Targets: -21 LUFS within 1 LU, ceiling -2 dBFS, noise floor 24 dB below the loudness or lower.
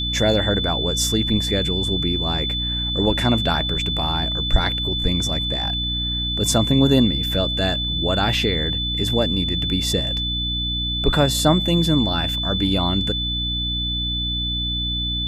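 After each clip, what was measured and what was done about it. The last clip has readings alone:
hum 60 Hz; highest harmonic 300 Hz; hum level -25 dBFS; steady tone 3.5 kHz; tone level -23 dBFS; loudness -20.0 LUFS; peak level -3.0 dBFS; loudness target -21.0 LUFS
-> de-hum 60 Hz, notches 5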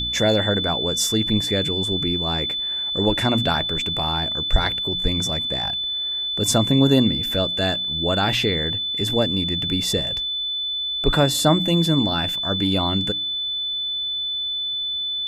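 hum not found; steady tone 3.5 kHz; tone level -23 dBFS
-> band-stop 3.5 kHz, Q 30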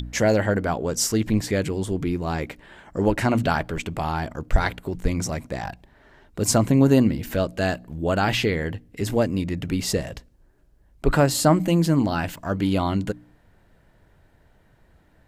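steady tone not found; loudness -23.5 LUFS; peak level -5.0 dBFS; loudness target -21.0 LUFS
-> trim +2.5 dB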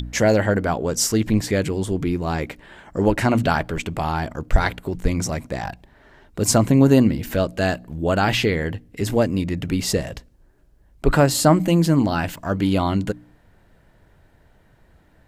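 loudness -21.0 LUFS; peak level -2.5 dBFS; noise floor -56 dBFS

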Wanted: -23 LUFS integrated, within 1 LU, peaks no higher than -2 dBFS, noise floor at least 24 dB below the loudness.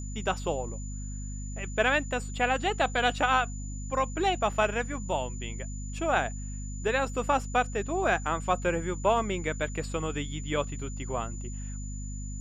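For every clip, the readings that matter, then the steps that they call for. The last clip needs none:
hum 50 Hz; highest harmonic 250 Hz; hum level -34 dBFS; steady tone 7 kHz; tone level -45 dBFS; loudness -30.0 LUFS; peak level -10.5 dBFS; loudness target -23.0 LUFS
-> de-hum 50 Hz, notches 5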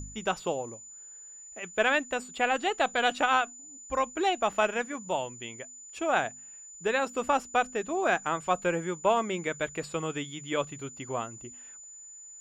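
hum not found; steady tone 7 kHz; tone level -45 dBFS
-> band-stop 7 kHz, Q 30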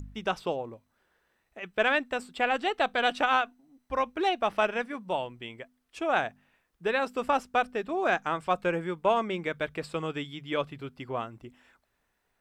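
steady tone not found; loudness -29.5 LUFS; peak level -10.5 dBFS; loudness target -23.0 LUFS
-> trim +6.5 dB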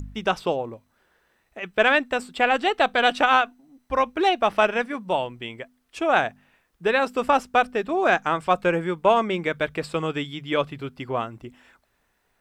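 loudness -23.0 LUFS; peak level -4.0 dBFS; noise floor -70 dBFS

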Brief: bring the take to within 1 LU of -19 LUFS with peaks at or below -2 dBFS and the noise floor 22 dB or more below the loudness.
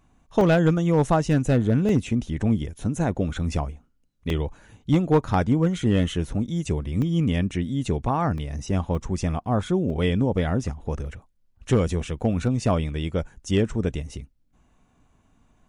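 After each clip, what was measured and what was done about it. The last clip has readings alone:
clipped samples 0.3%; clipping level -11.0 dBFS; dropouts 8; longest dropout 1.4 ms; loudness -24.0 LUFS; peak level -11.0 dBFS; loudness target -19.0 LUFS
-> clip repair -11 dBFS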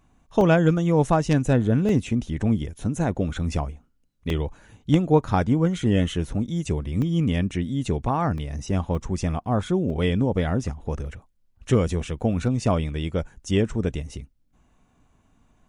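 clipped samples 0.0%; dropouts 8; longest dropout 1.4 ms
-> interpolate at 0.41/1.89/4.30/7.02/8.38/8.95/9.90/11.06 s, 1.4 ms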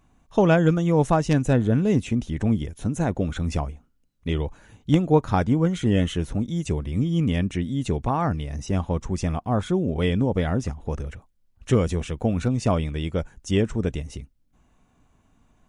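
dropouts 0; loudness -24.0 LUFS; peak level -3.5 dBFS; loudness target -19.0 LUFS
-> trim +5 dB; peak limiter -2 dBFS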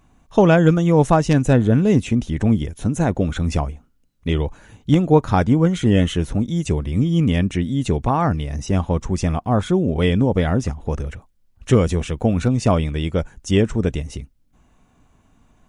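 loudness -19.0 LUFS; peak level -2.0 dBFS; noise floor -58 dBFS

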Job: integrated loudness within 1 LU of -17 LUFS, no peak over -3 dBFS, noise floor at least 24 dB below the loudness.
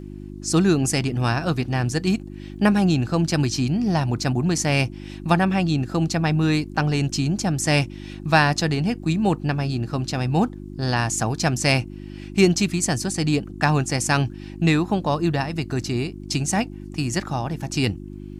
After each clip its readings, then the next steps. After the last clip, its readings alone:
tick rate 20 per s; hum 50 Hz; highest harmonic 350 Hz; hum level -35 dBFS; loudness -22.0 LUFS; peak level -3.5 dBFS; loudness target -17.0 LUFS
-> de-click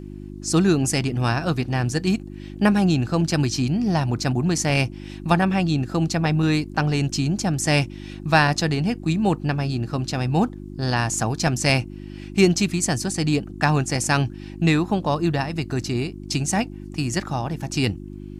tick rate 0.054 per s; hum 50 Hz; highest harmonic 350 Hz; hum level -35 dBFS
-> de-hum 50 Hz, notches 7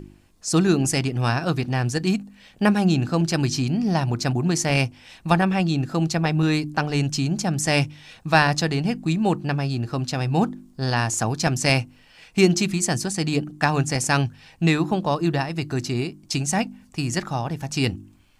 hum not found; loudness -22.5 LUFS; peak level -3.5 dBFS; loudness target -17.0 LUFS
-> trim +5.5 dB; peak limiter -3 dBFS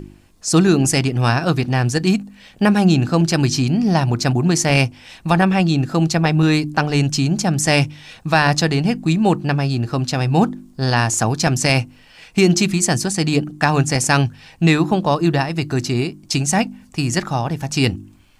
loudness -17.5 LUFS; peak level -3.0 dBFS; noise floor -48 dBFS

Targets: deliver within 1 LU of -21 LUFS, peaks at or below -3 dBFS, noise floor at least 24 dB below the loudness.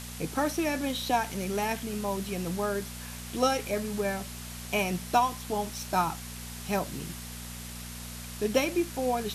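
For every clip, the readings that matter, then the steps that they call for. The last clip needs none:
hum 60 Hz; highest harmonic 240 Hz; hum level -41 dBFS; noise floor -41 dBFS; noise floor target -55 dBFS; loudness -31.0 LUFS; peak level -11.5 dBFS; loudness target -21.0 LUFS
-> de-hum 60 Hz, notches 4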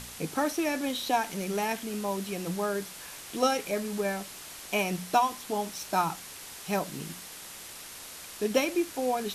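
hum not found; noise floor -45 dBFS; noise floor target -55 dBFS
-> noise reduction 10 dB, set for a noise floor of -45 dBFS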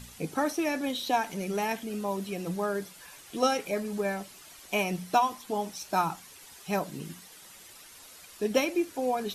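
noise floor -51 dBFS; noise floor target -55 dBFS
-> noise reduction 6 dB, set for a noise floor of -51 dBFS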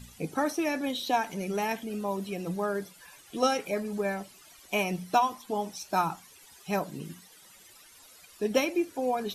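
noise floor -55 dBFS; loudness -30.5 LUFS; peak level -11.5 dBFS; loudness target -21.0 LUFS
-> trim +9.5 dB; peak limiter -3 dBFS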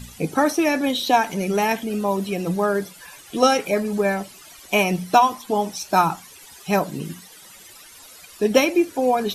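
loudness -21.0 LUFS; peak level -3.0 dBFS; noise floor -45 dBFS

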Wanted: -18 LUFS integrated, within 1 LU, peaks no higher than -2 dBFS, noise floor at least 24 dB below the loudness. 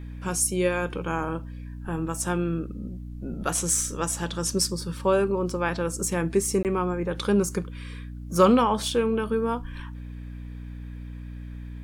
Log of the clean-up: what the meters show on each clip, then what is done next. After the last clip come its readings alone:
dropouts 1; longest dropout 18 ms; hum 60 Hz; highest harmonic 300 Hz; hum level -35 dBFS; loudness -25.5 LUFS; peak level -6.0 dBFS; loudness target -18.0 LUFS
-> interpolate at 6.63 s, 18 ms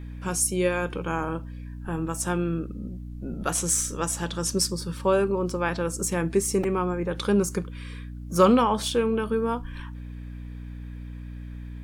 dropouts 0; hum 60 Hz; highest harmonic 300 Hz; hum level -35 dBFS
-> de-hum 60 Hz, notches 5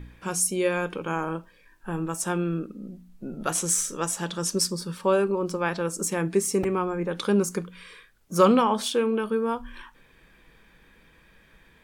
hum not found; loudness -26.0 LUFS; peak level -6.0 dBFS; loudness target -18.0 LUFS
-> trim +8 dB; peak limiter -2 dBFS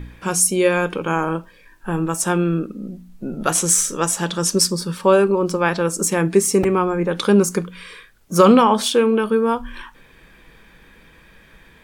loudness -18.0 LUFS; peak level -2.0 dBFS; noise floor -50 dBFS

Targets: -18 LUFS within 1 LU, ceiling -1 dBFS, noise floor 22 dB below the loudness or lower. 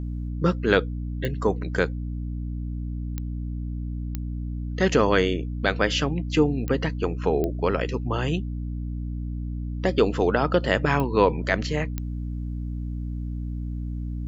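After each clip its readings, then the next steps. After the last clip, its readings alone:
clicks found 7; hum 60 Hz; highest harmonic 300 Hz; hum level -27 dBFS; loudness -26.0 LUFS; peak level -3.5 dBFS; loudness target -18.0 LUFS
-> de-click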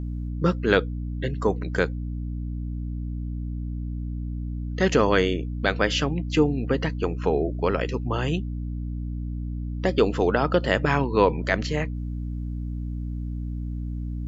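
clicks found 0; hum 60 Hz; highest harmonic 300 Hz; hum level -27 dBFS
-> hum notches 60/120/180/240/300 Hz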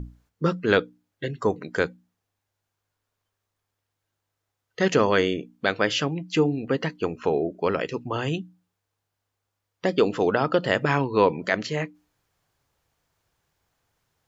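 hum not found; loudness -25.0 LUFS; peak level -3.5 dBFS; loudness target -18.0 LUFS
-> trim +7 dB; peak limiter -1 dBFS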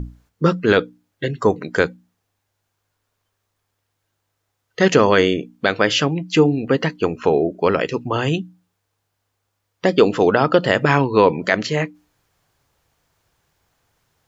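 loudness -18.5 LUFS; peak level -1.0 dBFS; noise floor -75 dBFS

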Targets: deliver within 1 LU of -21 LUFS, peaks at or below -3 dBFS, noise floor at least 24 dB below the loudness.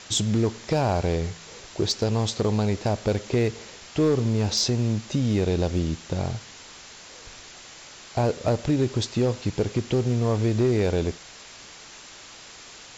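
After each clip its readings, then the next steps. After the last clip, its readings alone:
clipped samples 0.6%; clipping level -14.5 dBFS; noise floor -45 dBFS; noise floor target -49 dBFS; loudness -25.0 LUFS; peak level -14.5 dBFS; loudness target -21.0 LUFS
-> clip repair -14.5 dBFS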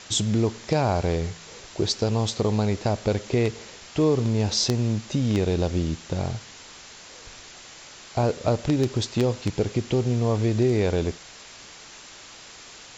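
clipped samples 0.0%; noise floor -45 dBFS; noise floor target -49 dBFS
-> noise reduction 6 dB, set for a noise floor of -45 dBFS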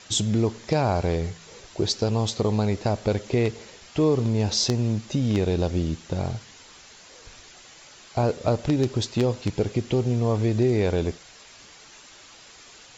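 noise floor -49 dBFS; loudness -25.0 LUFS; peak level -5.5 dBFS; loudness target -21.0 LUFS
-> trim +4 dB; peak limiter -3 dBFS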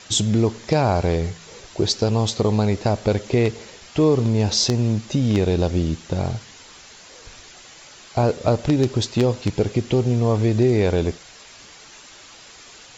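loudness -21.0 LUFS; peak level -3.0 dBFS; noise floor -45 dBFS

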